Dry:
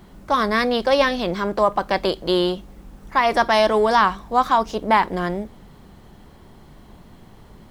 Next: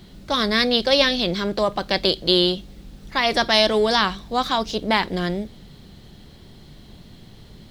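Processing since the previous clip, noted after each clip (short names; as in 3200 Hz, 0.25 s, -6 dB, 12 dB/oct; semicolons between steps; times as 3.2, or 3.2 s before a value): ten-band EQ 125 Hz +4 dB, 1000 Hz -8 dB, 4000 Hz +11 dB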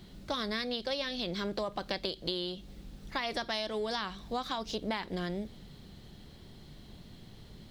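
compressor 10:1, threshold -24 dBFS, peak gain reduction 12.5 dB; gain -6.5 dB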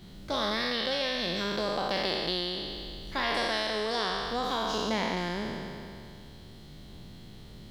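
spectral trails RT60 2.53 s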